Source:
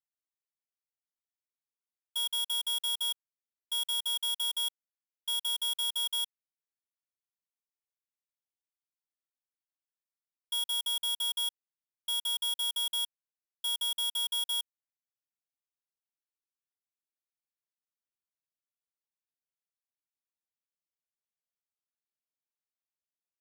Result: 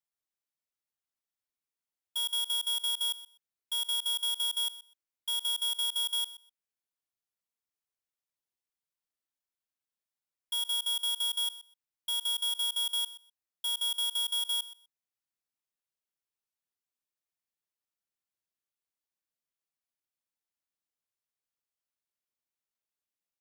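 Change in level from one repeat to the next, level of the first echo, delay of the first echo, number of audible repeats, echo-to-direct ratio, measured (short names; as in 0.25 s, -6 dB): -16.0 dB, -16.5 dB, 0.125 s, 2, -16.5 dB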